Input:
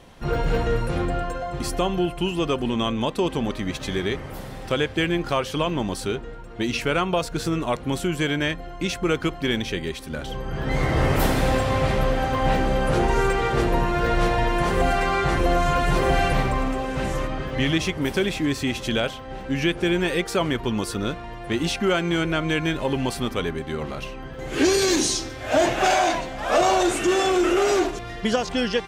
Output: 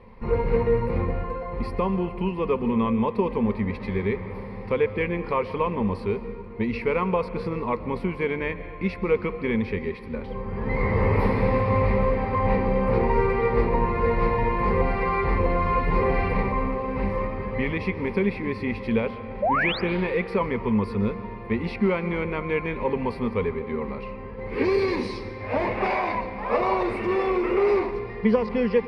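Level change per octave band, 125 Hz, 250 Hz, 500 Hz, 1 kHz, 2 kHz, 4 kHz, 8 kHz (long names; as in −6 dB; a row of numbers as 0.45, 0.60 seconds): −1.0 dB, −1.5 dB, 0.0 dB, −2.0 dB, −4.0 dB, −14.0 dB, below −30 dB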